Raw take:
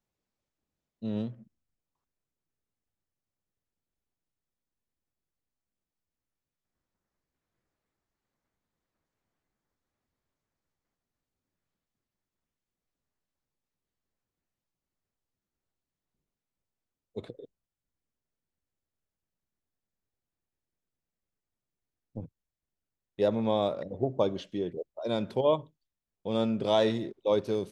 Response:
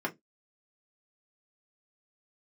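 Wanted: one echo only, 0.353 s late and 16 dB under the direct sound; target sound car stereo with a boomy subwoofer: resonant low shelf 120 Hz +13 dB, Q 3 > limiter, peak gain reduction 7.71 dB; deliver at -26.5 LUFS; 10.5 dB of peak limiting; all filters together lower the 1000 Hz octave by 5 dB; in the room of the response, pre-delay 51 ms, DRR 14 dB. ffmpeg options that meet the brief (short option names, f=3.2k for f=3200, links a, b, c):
-filter_complex "[0:a]equalizer=f=1k:t=o:g=-6.5,alimiter=level_in=1dB:limit=-24dB:level=0:latency=1,volume=-1dB,aecho=1:1:353:0.158,asplit=2[a][b];[1:a]atrim=start_sample=2205,adelay=51[c];[b][c]afir=irnorm=-1:irlink=0,volume=-20.5dB[d];[a][d]amix=inputs=2:normalize=0,lowshelf=f=120:t=q:w=3:g=13,volume=11dB,alimiter=limit=-16dB:level=0:latency=1"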